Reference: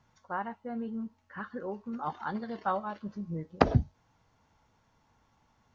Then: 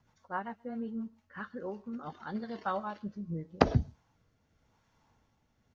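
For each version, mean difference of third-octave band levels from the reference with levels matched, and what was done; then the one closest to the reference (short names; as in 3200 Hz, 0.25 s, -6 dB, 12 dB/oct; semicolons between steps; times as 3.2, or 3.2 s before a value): 1.5 dB: dynamic EQ 5600 Hz, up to +4 dB, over -58 dBFS, Q 0.8; rotary speaker horn 7.5 Hz, later 0.9 Hz, at 0.91; outdoor echo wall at 22 m, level -27 dB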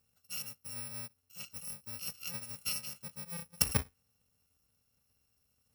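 19.5 dB: FFT order left unsorted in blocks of 128 samples; HPF 40 Hz; dynamic EQ 2000 Hz, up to +6 dB, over -50 dBFS, Q 0.78; gain -7 dB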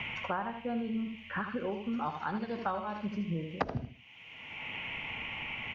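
7.0 dB: band noise 2000–3100 Hz -58 dBFS; feedback echo 77 ms, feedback 22%, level -8 dB; three-band squash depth 100%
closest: first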